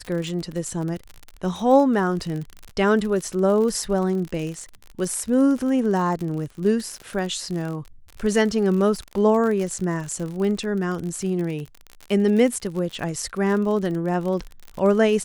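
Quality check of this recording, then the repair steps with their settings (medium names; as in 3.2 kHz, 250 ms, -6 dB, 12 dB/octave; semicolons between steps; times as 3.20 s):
crackle 50 per s -28 dBFS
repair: de-click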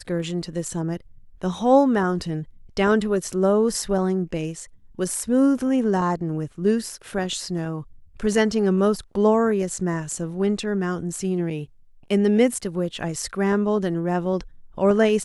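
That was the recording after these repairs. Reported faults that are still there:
nothing left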